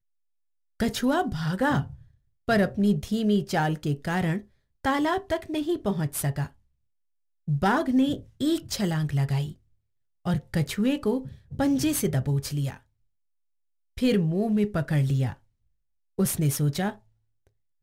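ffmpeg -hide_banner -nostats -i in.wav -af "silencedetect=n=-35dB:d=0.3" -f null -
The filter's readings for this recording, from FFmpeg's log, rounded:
silence_start: 0.00
silence_end: 0.80 | silence_duration: 0.80
silence_start: 1.93
silence_end: 2.48 | silence_duration: 0.55
silence_start: 4.40
silence_end: 4.85 | silence_duration: 0.45
silence_start: 6.47
silence_end: 7.48 | silence_duration: 1.01
silence_start: 9.52
silence_end: 10.26 | silence_duration: 0.73
silence_start: 12.74
silence_end: 13.97 | silence_duration: 1.23
silence_start: 15.33
silence_end: 16.19 | silence_duration: 0.86
silence_start: 16.93
silence_end: 17.83 | silence_duration: 0.90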